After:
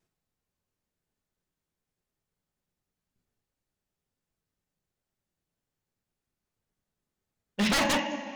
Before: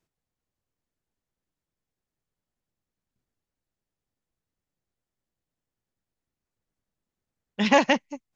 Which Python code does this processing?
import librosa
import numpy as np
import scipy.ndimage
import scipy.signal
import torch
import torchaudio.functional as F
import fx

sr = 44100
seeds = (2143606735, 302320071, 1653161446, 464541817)

y = fx.rev_double_slope(x, sr, seeds[0], early_s=0.51, late_s=2.7, knee_db=-14, drr_db=4.5)
y = fx.vibrato(y, sr, rate_hz=1.4, depth_cents=20.0)
y = 10.0 ** (-19.5 / 20.0) * (np.abs((y / 10.0 ** (-19.5 / 20.0) + 3.0) % 4.0 - 2.0) - 1.0)